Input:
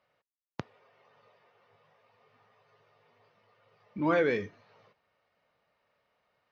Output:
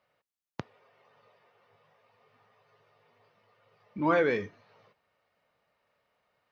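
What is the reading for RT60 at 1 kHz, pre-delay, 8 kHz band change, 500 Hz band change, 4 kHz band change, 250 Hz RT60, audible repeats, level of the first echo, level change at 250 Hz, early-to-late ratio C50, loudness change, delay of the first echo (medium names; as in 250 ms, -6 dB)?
no reverb, no reverb, no reading, +1.0 dB, 0.0 dB, no reverb, no echo, no echo, 0.0 dB, no reverb, +1.5 dB, no echo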